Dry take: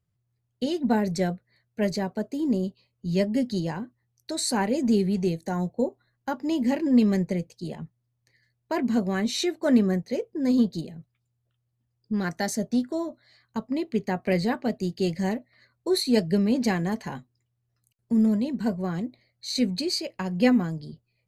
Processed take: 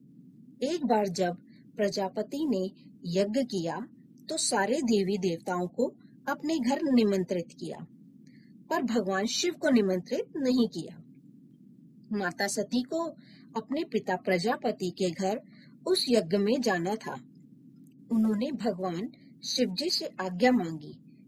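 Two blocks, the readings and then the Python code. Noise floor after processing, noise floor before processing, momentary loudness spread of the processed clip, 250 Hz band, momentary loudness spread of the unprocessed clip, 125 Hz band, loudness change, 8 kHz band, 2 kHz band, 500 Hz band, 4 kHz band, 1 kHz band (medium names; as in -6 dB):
-57 dBFS, -77 dBFS, 14 LU, -5.5 dB, 14 LU, -7.0 dB, -3.5 dB, 0.0 dB, 0.0 dB, -0.5 dB, -0.5 dB, +0.5 dB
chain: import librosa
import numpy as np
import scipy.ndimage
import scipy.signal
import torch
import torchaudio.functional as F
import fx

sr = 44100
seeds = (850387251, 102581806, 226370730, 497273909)

y = fx.spec_quant(x, sr, step_db=30)
y = fx.dmg_noise_band(y, sr, seeds[0], low_hz=130.0, high_hz=280.0, level_db=-49.0)
y = fx.low_shelf(y, sr, hz=210.0, db=-9.0)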